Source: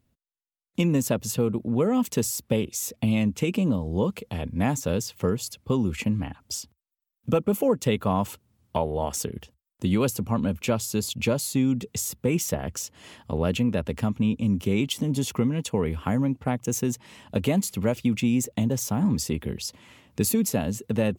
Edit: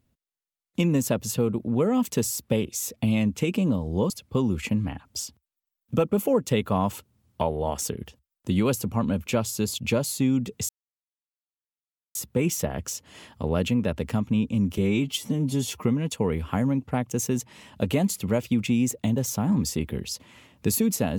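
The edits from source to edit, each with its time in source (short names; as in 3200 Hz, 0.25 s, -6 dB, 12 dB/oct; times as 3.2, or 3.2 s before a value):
4.1–5.45 cut
12.04 insert silence 1.46 s
14.67–15.38 stretch 1.5×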